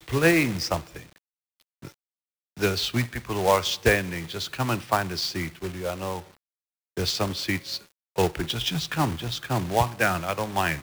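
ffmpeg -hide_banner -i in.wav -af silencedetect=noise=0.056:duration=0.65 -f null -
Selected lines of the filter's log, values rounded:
silence_start: 0.78
silence_end: 2.62 | silence_duration: 1.84
silence_start: 6.17
silence_end: 6.98 | silence_duration: 0.81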